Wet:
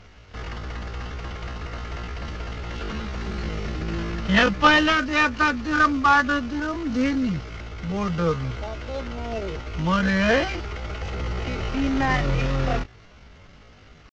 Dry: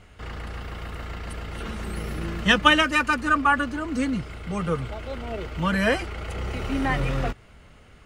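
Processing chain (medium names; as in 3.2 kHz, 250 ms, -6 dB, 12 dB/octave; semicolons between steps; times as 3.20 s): CVSD coder 32 kbps; tempo 0.57×; trim +2.5 dB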